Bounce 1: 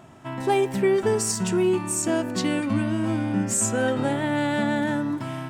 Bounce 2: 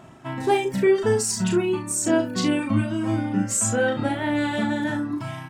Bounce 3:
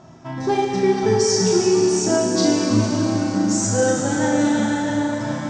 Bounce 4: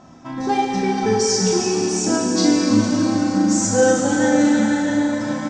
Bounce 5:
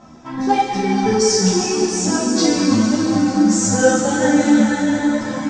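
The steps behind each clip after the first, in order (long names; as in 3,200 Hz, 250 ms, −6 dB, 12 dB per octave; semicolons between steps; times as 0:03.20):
reverb reduction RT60 1.2 s; high-shelf EQ 9,400 Hz −3.5 dB; on a send: ambience of single reflections 37 ms −4.5 dB, 65 ms −13 dB; on the sum: level +1.5 dB
drawn EQ curve 1,000 Hz 0 dB, 2,800 Hz −7 dB, 5,900 Hz +9 dB, 11,000 Hz −27 dB; dense smooth reverb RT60 4.8 s, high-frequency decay 0.95×, DRR −2.5 dB
comb filter 3.9 ms, depth 56%
string-ensemble chorus; level +5 dB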